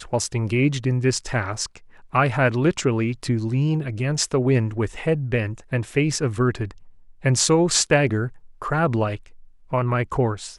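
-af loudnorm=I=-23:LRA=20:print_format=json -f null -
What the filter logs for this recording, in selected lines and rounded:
"input_i" : "-22.3",
"input_tp" : "-3.0",
"input_lra" : "1.8",
"input_thresh" : "-32.7",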